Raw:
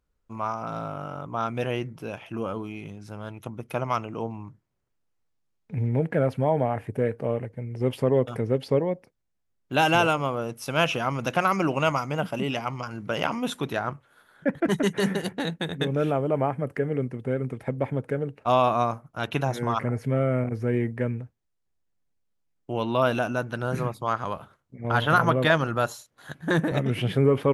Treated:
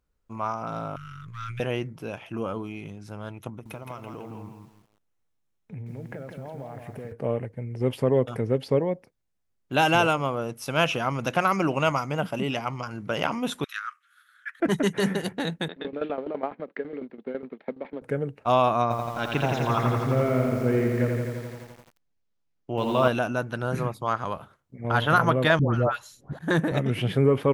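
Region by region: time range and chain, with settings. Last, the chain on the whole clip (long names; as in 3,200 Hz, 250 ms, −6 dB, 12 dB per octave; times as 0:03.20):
0:00.96–0:01.60: gain on one half-wave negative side −3 dB + inverse Chebyshev band-stop filter 280–770 Hz, stop band 50 dB + transient designer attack −1 dB, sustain +10 dB
0:03.49–0:07.12: notch filter 4,700 Hz, Q 8.5 + downward compressor 10 to 1, threshold −34 dBFS + feedback echo at a low word length 166 ms, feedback 35%, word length 10 bits, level −5 dB
0:13.64–0:14.60: Chebyshev high-pass filter 1,200 Hz, order 6 + notch filter 4,600 Hz, Q 23
0:15.68–0:18.02: mu-law and A-law mismatch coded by A + Chebyshev band-pass filter 200–4,100 Hz, order 4 + shaped tremolo saw down 12 Hz, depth 85%
0:18.82–0:23.08: low-pass filter 6,500 Hz 24 dB per octave + feedback echo at a low word length 85 ms, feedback 80%, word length 8 bits, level −4 dB
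0:25.59–0:26.39: spectral tilt −2.5 dB per octave + all-pass dispersion highs, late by 147 ms, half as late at 940 Hz
whole clip: no processing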